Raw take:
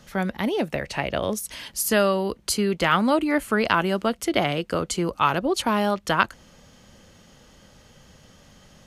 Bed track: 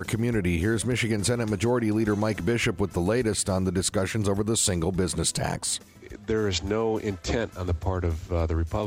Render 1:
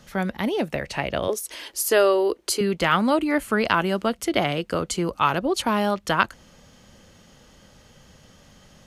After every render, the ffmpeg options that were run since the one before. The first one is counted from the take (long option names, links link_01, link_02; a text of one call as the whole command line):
ffmpeg -i in.wav -filter_complex "[0:a]asettb=1/sr,asplit=3[link_01][link_02][link_03];[link_01]atrim=end=1.284[link_04];[link_02]atrim=start=1.28:end=2.61,asetpts=PTS-STARTPTS,afade=type=in:duration=0.004:curve=qsin,afade=type=out:start_time=1.326:duration=0.004:curve=qsin,lowshelf=frequency=250:width_type=q:width=3:gain=-11.5[link_05];[link_03]atrim=start=2.606[link_06];[link_04][link_05]acrossfade=duration=0.004:curve1=hsin:curve2=qsin[link_07];[link_07][link_06]acrossfade=duration=0.004:curve1=qsin:curve2=hsin" out.wav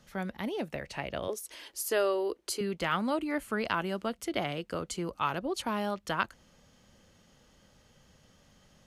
ffmpeg -i in.wav -af "volume=-10dB" out.wav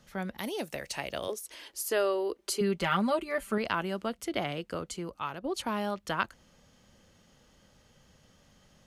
ffmpeg -i in.wav -filter_complex "[0:a]asettb=1/sr,asplit=3[link_01][link_02][link_03];[link_01]atrim=end=0.384[link_04];[link_02]atrim=start=0.38:end=1.32,asetpts=PTS-STARTPTS,afade=type=in:duration=0.004:curve=qsin,afade=type=out:start_time=0.936:duration=0.004:curve=qsin,bass=frequency=250:gain=-5,treble=frequency=4000:gain=13[link_05];[link_03]atrim=start=1.316[link_06];[link_04][link_05]acrossfade=duration=0.004:curve1=hsin:curve2=qsin[link_07];[link_07][link_06]acrossfade=duration=0.004:curve1=qsin:curve2=hsin,asettb=1/sr,asplit=3[link_08][link_09][link_10];[link_08]atrim=end=2.384[link_11];[link_09]atrim=start=2.38:end=3.58,asetpts=PTS-STARTPTS,afade=type=in:duration=0.004:curve=qsin,afade=type=out:start_time=1.196:duration=0.004:curve=qsin,aecho=1:1:5.1:0.78,atrim=end_sample=52920[link_12];[link_10]atrim=start=3.576[link_13];[link_11][link_12]acrossfade=duration=0.004:curve1=hsin:curve2=qsin[link_14];[link_14][link_13]acrossfade=duration=0.004:curve1=qsin:curve2=hsin,asplit=2[link_15][link_16];[link_15]atrim=end=5.44,asetpts=PTS-STARTPTS,afade=type=out:start_time=4.66:duration=0.78:silence=0.398107[link_17];[link_16]atrim=start=5.44,asetpts=PTS-STARTPTS,afade=type=in:duration=0.004:curve=hsin:silence=0.398107[link_18];[link_17][link_18]concat=n=2:v=0:a=1" out.wav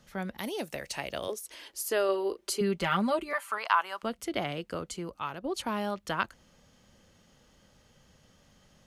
ffmpeg -i in.wav -filter_complex "[0:a]asettb=1/sr,asplit=3[link_01][link_02][link_03];[link_01]atrim=end=2.054[link_04];[link_02]atrim=start=2.05:end=2.51,asetpts=PTS-STARTPTS,afade=type=in:duration=0.004:curve=qsin,afade=type=out:start_time=0.456:duration=0.004:curve=qsin,asplit=2[link_05][link_06];[link_06]adelay=36,volume=-9dB[link_07];[link_05][link_07]amix=inputs=2:normalize=0,atrim=end_sample=20286[link_08];[link_03]atrim=start=2.506[link_09];[link_04][link_08]acrossfade=duration=0.004:curve1=hsin:curve2=qsin[link_10];[link_10][link_09]acrossfade=duration=0.004:curve1=qsin:curve2=hsin,asettb=1/sr,asplit=3[link_11][link_12][link_13];[link_11]atrim=end=3.334[link_14];[link_12]atrim=start=3.33:end=4.03,asetpts=PTS-STARTPTS,afade=type=in:duration=0.004:curve=qsin,afade=type=out:start_time=0.696:duration=0.004:curve=qsin,highpass=frequency=1000:width_type=q:width=2.9[link_15];[link_13]atrim=start=4.026[link_16];[link_14][link_15]acrossfade=duration=0.004:curve1=hsin:curve2=qsin[link_17];[link_17][link_16]acrossfade=duration=0.004:curve1=qsin:curve2=hsin" out.wav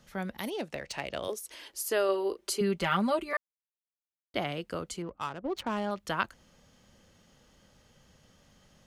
ffmpeg -i in.wav -filter_complex "[0:a]asettb=1/sr,asplit=3[link_01][link_02][link_03];[link_01]atrim=end=0.504[link_04];[link_02]atrim=start=0.5:end=1.24,asetpts=PTS-STARTPTS,afade=type=in:duration=0.004:curve=qsin,afade=type=out:start_time=0.736:duration=0.004:curve=qsin,adynamicsmooth=sensitivity=6.5:basefreq=4300[link_05];[link_03]atrim=start=1.236[link_06];[link_04][link_05]acrossfade=duration=0.004:curve1=hsin:curve2=qsin[link_07];[link_07][link_06]acrossfade=duration=0.004:curve1=qsin:curve2=hsin,asettb=1/sr,asplit=3[link_08][link_09][link_10];[link_08]atrim=end=5.024[link_11];[link_09]atrim=start=5.02:end=5.91,asetpts=PTS-STARTPTS,afade=type=in:duration=0.004:curve=qsin,afade=type=out:start_time=0.886:duration=0.004:curve=qsin,adynamicsmooth=sensitivity=8:basefreq=1200[link_12];[link_10]atrim=start=5.906[link_13];[link_11][link_12]acrossfade=duration=0.004:curve1=hsin:curve2=qsin[link_14];[link_14][link_13]acrossfade=duration=0.004:curve1=qsin:curve2=hsin,asplit=3[link_15][link_16][link_17];[link_15]atrim=end=3.37,asetpts=PTS-STARTPTS,afade=type=out:start_time=3.366:duration=0.004:curve=hsin[link_18];[link_16]atrim=start=3.37:end=4.34,asetpts=PTS-STARTPTS,volume=0[link_19];[link_17]atrim=start=4.34,asetpts=PTS-STARTPTS,afade=type=in:duration=0.004:curve=hsin[link_20];[link_18][link_19][link_20]concat=n=3:v=0:a=1" out.wav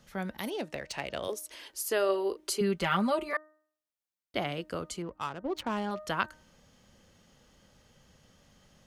ffmpeg -i in.wav -af "bandreject=frequency=307.7:width_type=h:width=4,bandreject=frequency=615.4:width_type=h:width=4,bandreject=frequency=923.1:width_type=h:width=4,bandreject=frequency=1230.8:width_type=h:width=4,bandreject=frequency=1538.5:width_type=h:width=4,bandreject=frequency=1846.2:width_type=h:width=4" out.wav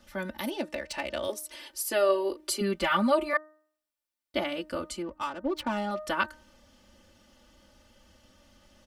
ffmpeg -i in.wav -af "bandreject=frequency=6600:width=13,aecho=1:1:3.4:0.92" out.wav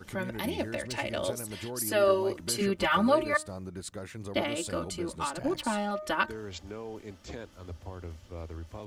ffmpeg -i in.wav -i bed.wav -filter_complex "[1:a]volume=-15dB[link_01];[0:a][link_01]amix=inputs=2:normalize=0" out.wav